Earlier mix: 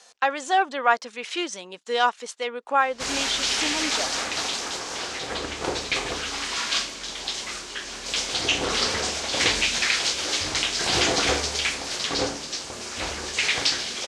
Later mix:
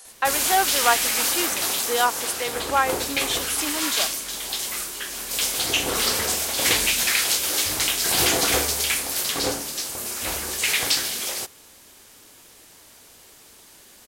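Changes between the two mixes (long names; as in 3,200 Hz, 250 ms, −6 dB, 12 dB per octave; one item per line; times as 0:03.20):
background: entry −2.75 s
master: remove low-pass filter 6,500 Hz 24 dB per octave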